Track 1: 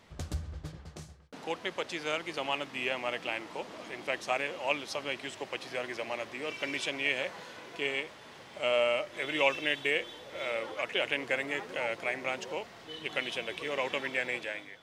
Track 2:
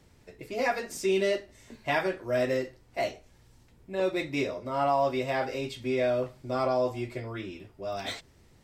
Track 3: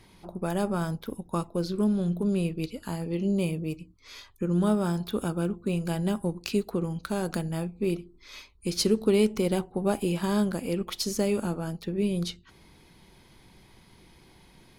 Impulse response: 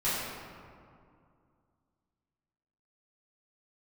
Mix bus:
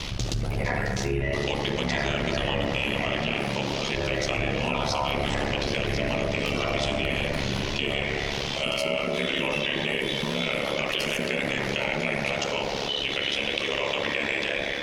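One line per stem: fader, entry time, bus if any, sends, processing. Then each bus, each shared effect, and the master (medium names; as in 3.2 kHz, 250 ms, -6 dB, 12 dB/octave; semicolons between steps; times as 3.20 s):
+2.5 dB, 0.00 s, bus A, send -11.5 dB, peak limiter -21 dBFS, peak gain reduction 10 dB
-10.0 dB, 0.00 s, bus A, send -5.5 dB, octave divider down 2 oct, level +2 dB; resonant high shelf 2.9 kHz -12.5 dB, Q 3
-6.5 dB, 0.00 s, no bus, send -15 dB, compression 2:1, threshold -32 dBFS, peak gain reduction 8 dB
bus A: 0.0 dB, high-order bell 4 kHz +13 dB; compression, threshold -29 dBFS, peak gain reduction 12 dB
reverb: on, RT60 2.3 s, pre-delay 3 ms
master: bass shelf 130 Hz +6.5 dB; ring modulator 35 Hz; level flattener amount 70%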